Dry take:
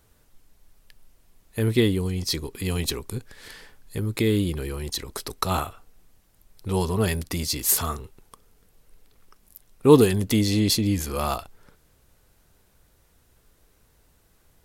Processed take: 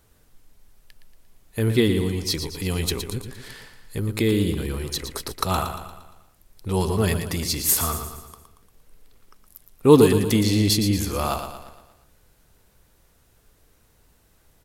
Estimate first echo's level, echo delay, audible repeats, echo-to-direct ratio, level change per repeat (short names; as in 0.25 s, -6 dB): -8.5 dB, 0.116 s, 5, -7.0 dB, -6.0 dB